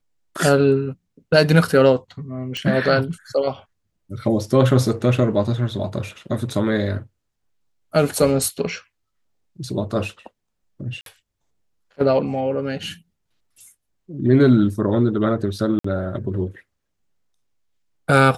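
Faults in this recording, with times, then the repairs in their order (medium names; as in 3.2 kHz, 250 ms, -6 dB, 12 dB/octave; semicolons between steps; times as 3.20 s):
2.57 s: pop -14 dBFS
11.01–11.06 s: dropout 52 ms
15.79–15.84 s: dropout 54 ms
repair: de-click; interpolate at 11.01 s, 52 ms; interpolate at 15.79 s, 54 ms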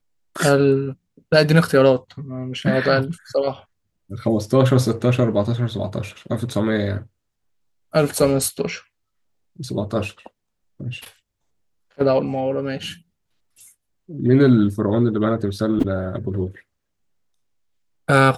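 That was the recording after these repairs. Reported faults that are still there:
nothing left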